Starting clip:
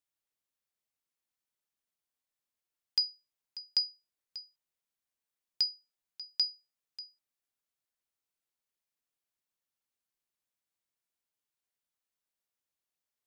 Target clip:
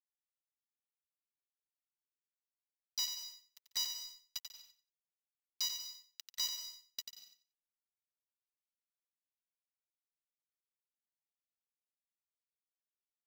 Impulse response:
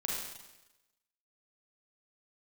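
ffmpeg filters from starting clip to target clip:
-filter_complex "[0:a]equalizer=f=130:t=o:w=2:g=-15,aecho=1:1:4.2:0.53,areverse,acompressor=threshold=0.00891:ratio=16,areverse,asplit=4[s0][s1][s2][s3];[s1]asetrate=35002,aresample=44100,atempo=1.25992,volume=0.562[s4];[s2]asetrate=52444,aresample=44100,atempo=0.840896,volume=0.631[s5];[s3]asetrate=58866,aresample=44100,atempo=0.749154,volume=0.126[s6];[s0][s4][s5][s6]amix=inputs=4:normalize=0,adynamicsmooth=sensitivity=2.5:basefreq=3800,acrusher=bits=6:mix=0:aa=0.5,aecho=1:1:90|180|270:0.447|0.0893|0.0179,asplit=2[s7][s8];[1:a]atrim=start_sample=2205,afade=t=out:st=0.16:d=0.01,atrim=end_sample=7497,adelay=144[s9];[s8][s9]afir=irnorm=-1:irlink=0,volume=0.2[s10];[s7][s10]amix=inputs=2:normalize=0,volume=3.16"

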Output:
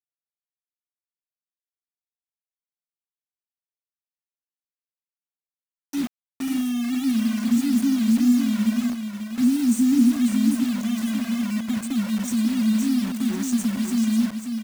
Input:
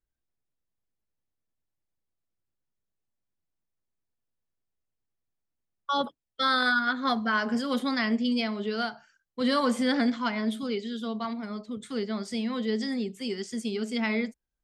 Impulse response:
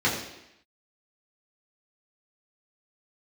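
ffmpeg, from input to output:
-filter_complex "[0:a]afftfilt=real='re*(1-between(b*sr/4096,370,5600))':imag='im*(1-between(b*sr/4096,370,5600))':win_size=4096:overlap=0.75,anlmdn=0.000631,lowshelf=f=120:g=-4.5,asplit=2[s0][s1];[s1]acompressor=threshold=0.0112:ratio=12,volume=0.794[s2];[s0][s2]amix=inputs=2:normalize=0,acrusher=bits=6:mix=0:aa=0.000001,asplit=2[s3][s4];[s4]aecho=0:1:543:0.473[s5];[s3][s5]amix=inputs=2:normalize=0,volume=2.51"

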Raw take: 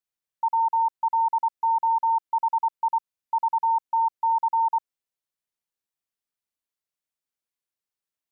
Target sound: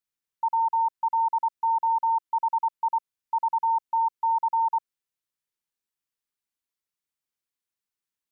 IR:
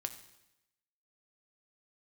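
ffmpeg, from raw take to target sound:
-af "equalizer=f=640:t=o:w=0.52:g=-6.5"

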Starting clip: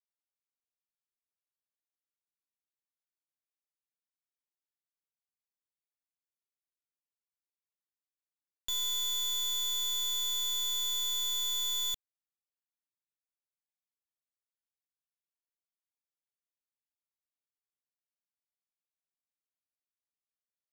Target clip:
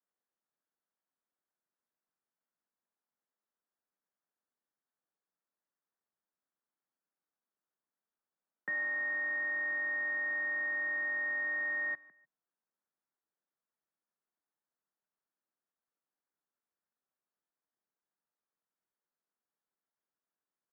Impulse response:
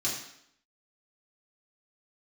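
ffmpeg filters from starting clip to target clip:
-af "aecho=1:1:152|304:0.0794|0.023,highpass=f=160:t=q:w=0.5412,highpass=f=160:t=q:w=1.307,lowpass=f=3300:t=q:w=0.5176,lowpass=f=3300:t=q:w=0.7071,lowpass=f=3300:t=q:w=1.932,afreqshift=140,asetrate=22696,aresample=44100,atempo=1.94306,volume=1.78"

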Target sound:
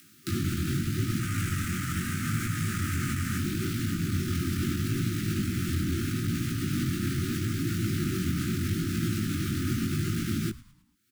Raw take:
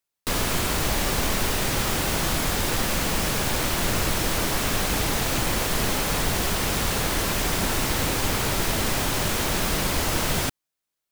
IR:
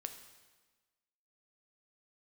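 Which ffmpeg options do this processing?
-filter_complex "[0:a]volume=20,asoftclip=hard,volume=0.0501,asettb=1/sr,asplit=3[s0][s1][s2];[s0]atrim=end=1.194[s3];[s1]atrim=start=1.19:end=3.38,asetpts=PTS-STARTPTS,afade=t=in:d=0.004:c=qsin,afade=t=out:st=2.186:d=0.004:c=qsin,equalizer=f=250:t=o:w=1:g=-8,equalizer=f=1000:t=o:w=1:g=8,equalizer=f=2000:t=o:w=1:g=4,equalizer=f=4000:t=o:w=1:g=-4,equalizer=f=8000:t=o:w=1:g=5[s4];[s2]atrim=start=3.376[s5];[s3][s4]acrossfade=d=0.004:c1=hsin:c2=qsin[s6];[s6][s5]acrossfade=d=0.004:c1=qsin:c2=hsin,afreqshift=76,equalizer=f=200:w=0.31:g=14.5,acompressor=mode=upward:threshold=0.0355:ratio=2.5,alimiter=limit=0.15:level=0:latency=1:release=183,afftfilt=real='re*(1-between(b*sr/4096,380,1200))':imag='im*(1-between(b*sr/4096,380,1200))':win_size=4096:overlap=0.75,flanger=delay=17.5:depth=5.4:speed=0.77,asplit=5[s7][s8][s9][s10][s11];[s8]adelay=108,afreqshift=-100,volume=0.112[s12];[s9]adelay=216,afreqshift=-200,volume=0.0507[s13];[s10]adelay=324,afreqshift=-300,volume=0.0226[s14];[s11]adelay=432,afreqshift=-400,volume=0.0102[s15];[s7][s12][s13][s14][s15]amix=inputs=5:normalize=0"

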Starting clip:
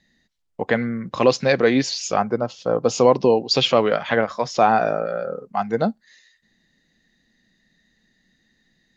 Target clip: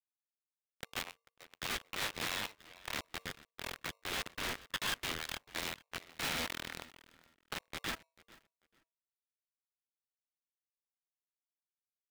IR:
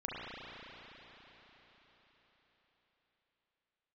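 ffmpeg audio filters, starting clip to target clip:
-filter_complex "[0:a]flanger=delay=5.2:depth=4.2:regen=-56:speed=0.87:shape=triangular,asubboost=boost=6:cutoff=160,acrusher=bits=2:mix=0:aa=0.5,aresample=8000,aresample=44100,volume=18.8,asoftclip=hard,volume=0.0531,aderivative,asplit=2[s0][s1];[s1]adelay=327,lowpass=f=2900:p=1,volume=0.0708,asplit=2[s2][s3];[s3]adelay=327,lowpass=f=2900:p=1,volume=0.25[s4];[s2][s4]amix=inputs=2:normalize=0[s5];[s0][s5]amix=inputs=2:normalize=0,asetrate=32667,aresample=44100,aeval=exprs='(mod(44.7*val(0)+1,2)-1)/44.7':c=same,asplit=2[s6][s7];[s7]highpass=f=720:p=1,volume=11.2,asoftclip=type=tanh:threshold=0.0596[s8];[s6][s8]amix=inputs=2:normalize=0,lowpass=f=2600:p=1,volume=0.501,bandreject=f=50:t=h:w=6,bandreject=f=100:t=h:w=6,bandreject=f=150:t=h:w=6,bandreject=f=200:t=h:w=6,bandreject=f=250:t=h:w=6,bandreject=f=300:t=h:w=6,bandreject=f=350:t=h:w=6,aeval=exprs='val(0)*sgn(sin(2*PI*810*n/s))':c=same,volume=1.41"

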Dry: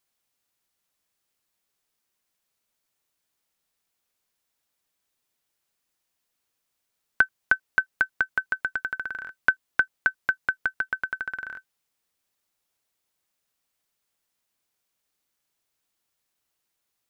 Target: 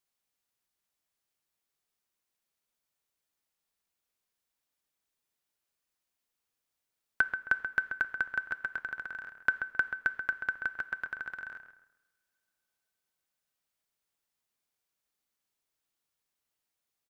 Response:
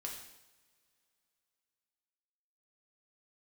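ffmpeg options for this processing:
-filter_complex "[0:a]asplit=2[s0][s1];[s1]adelay=133,lowpass=f=2200:p=1,volume=0.422,asplit=2[s2][s3];[s3]adelay=133,lowpass=f=2200:p=1,volume=0.34,asplit=2[s4][s5];[s5]adelay=133,lowpass=f=2200:p=1,volume=0.34,asplit=2[s6][s7];[s7]adelay=133,lowpass=f=2200:p=1,volume=0.34[s8];[s0][s2][s4][s6][s8]amix=inputs=5:normalize=0,asplit=2[s9][s10];[1:a]atrim=start_sample=2205[s11];[s10][s11]afir=irnorm=-1:irlink=0,volume=0.355[s12];[s9][s12]amix=inputs=2:normalize=0,volume=0.376"

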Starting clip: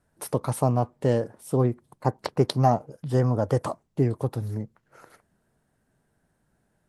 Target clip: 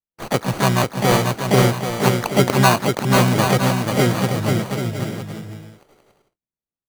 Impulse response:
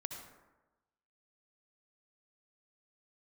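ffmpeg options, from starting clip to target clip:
-filter_complex "[0:a]acrusher=samples=25:mix=1:aa=0.000001,asplit=3[s0][s1][s2];[s1]asetrate=66075,aresample=44100,atempo=0.66742,volume=0.708[s3];[s2]asetrate=88200,aresample=44100,atempo=0.5,volume=0.282[s4];[s0][s3][s4]amix=inputs=3:normalize=0,agate=range=0.0141:threshold=0.00158:ratio=16:detection=peak,asplit=2[s5][s6];[s6]aecho=0:1:490|784|960.4|1066|1130:0.631|0.398|0.251|0.158|0.1[s7];[s5][s7]amix=inputs=2:normalize=0,volume=1.5"

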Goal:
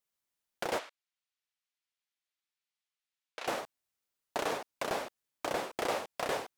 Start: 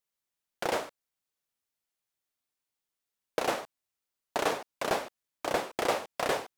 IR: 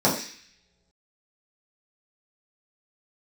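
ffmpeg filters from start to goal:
-filter_complex "[0:a]alimiter=limit=0.0891:level=0:latency=1:release=91,asplit=3[s0][s1][s2];[s0]afade=t=out:st=0.78:d=0.02[s3];[s1]bandpass=f=2800:t=q:w=0.78:csg=0,afade=t=in:st=0.78:d=0.02,afade=t=out:st=3.46:d=0.02[s4];[s2]afade=t=in:st=3.46:d=0.02[s5];[s3][s4][s5]amix=inputs=3:normalize=0"

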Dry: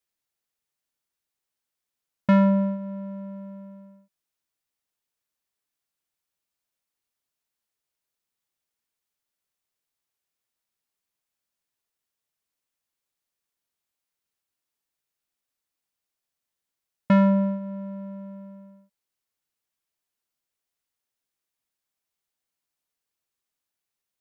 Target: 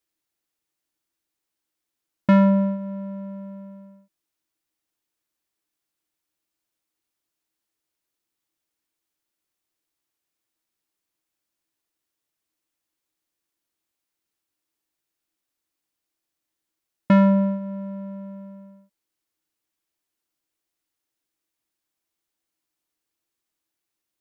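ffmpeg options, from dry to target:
-af "equalizer=f=320:t=o:w=0.21:g=13.5,volume=1.26"

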